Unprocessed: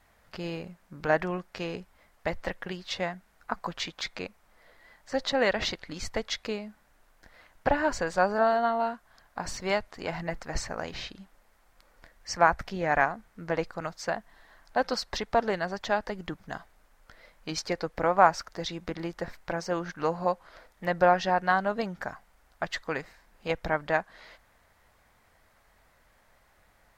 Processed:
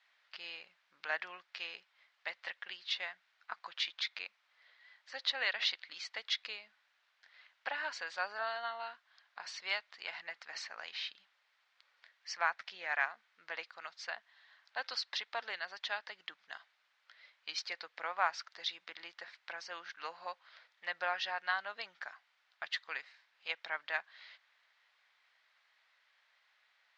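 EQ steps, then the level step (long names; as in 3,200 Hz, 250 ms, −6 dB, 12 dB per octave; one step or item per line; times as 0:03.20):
high-pass filter 1,200 Hz 6 dB per octave
low-pass filter 3,800 Hz 24 dB per octave
first difference
+8.5 dB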